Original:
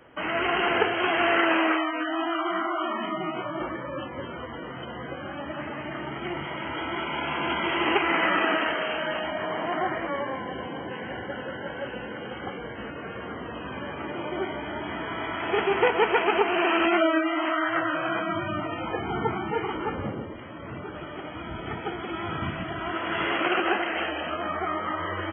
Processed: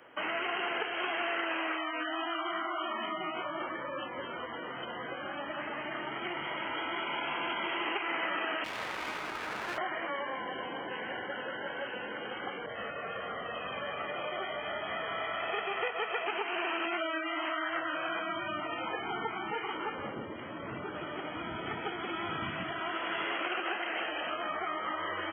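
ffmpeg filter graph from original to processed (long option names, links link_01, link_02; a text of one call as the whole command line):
ffmpeg -i in.wav -filter_complex "[0:a]asettb=1/sr,asplit=3[link_01][link_02][link_03];[link_01]atrim=end=8.644[link_04];[link_02]atrim=start=8.64:end=9.78,asetpts=PTS-STARTPTS,afade=type=in:duration=0.004:curve=qsin,afade=type=out:start_time=1.136:duration=0.004:curve=qsin,lowpass=frequency=1700:width=0.5412,lowpass=frequency=1700:width=1.3066,aeval=exprs='abs(val(0))':channel_layout=same[link_05];[link_03]atrim=start=9.776[link_06];[link_04][link_05]acrossfade=duration=0.004:curve1=hsin:curve2=qsin[link_07];[link_07][link_06]acrossfade=duration=0.004:curve1=qsin:curve2=hsin,asettb=1/sr,asplit=3[link_08][link_09][link_10];[link_08]atrim=end=12.664[link_11];[link_09]atrim=start=12.66:end=16.27,asetpts=PTS-STARTPTS,afade=type=in:duration=0.004:curve=qsin,afade=type=out:start_time=3.606:duration=0.004:curve=qsin,aecho=1:1:1.6:0.62,atrim=end_sample=159201,adynamicequalizer=threshold=0.0178:dfrequency=1600:dqfactor=0.7:tfrequency=1600:tqfactor=0.7:attack=5:release=100:ratio=0.375:range=2:mode=cutabove:tftype=highshelf[link_12];[link_10]atrim=start=16.266[link_13];[link_11][link_12]acrossfade=duration=0.004:curve1=hsin:curve2=qsin[link_14];[link_14][link_13]acrossfade=duration=0.004:curve1=qsin:curve2=hsin,asettb=1/sr,asplit=3[link_15][link_16][link_17];[link_15]atrim=end=20.164[link_18];[link_16]atrim=start=20.16:end=22.71,asetpts=PTS-STARTPTS,afade=type=in:duration=0.004:curve=qsin,afade=type=out:start_time=2.546:duration=0.004:curve=qsin,highpass=49,lowshelf=frequency=340:gain=9[link_19];[link_17]atrim=start=22.706[link_20];[link_18][link_19]acrossfade=duration=0.004:curve1=hsin:curve2=qsin[link_21];[link_21][link_20]acrossfade=duration=0.004:curve1=qsin:curve2=hsin,highpass=frequency=520:poles=1,acrossover=split=930|2200[link_22][link_23][link_24];[link_22]acompressor=threshold=-38dB:ratio=4[link_25];[link_23]acompressor=threshold=-39dB:ratio=4[link_26];[link_24]acompressor=threshold=-40dB:ratio=4[link_27];[link_25][link_26][link_27]amix=inputs=3:normalize=0" out.wav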